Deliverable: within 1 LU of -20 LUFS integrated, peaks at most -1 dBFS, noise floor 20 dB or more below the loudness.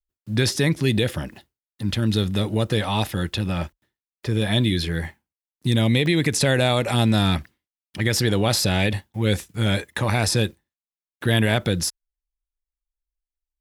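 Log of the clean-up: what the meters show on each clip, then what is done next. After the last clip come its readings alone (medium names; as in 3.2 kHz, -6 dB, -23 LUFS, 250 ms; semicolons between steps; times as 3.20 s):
dropouts 2; longest dropout 1.7 ms; loudness -22.0 LUFS; peak level -5.5 dBFS; loudness target -20.0 LUFS
-> interpolate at 4.42/6.06 s, 1.7 ms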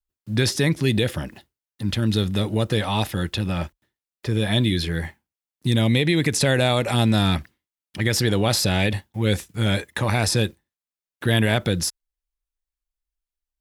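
dropouts 0; loudness -22.0 LUFS; peak level -5.5 dBFS; loudness target -20.0 LUFS
-> trim +2 dB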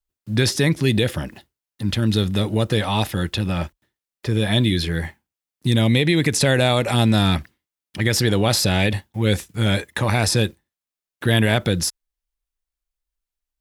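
loudness -20.0 LUFS; peak level -3.5 dBFS; noise floor -90 dBFS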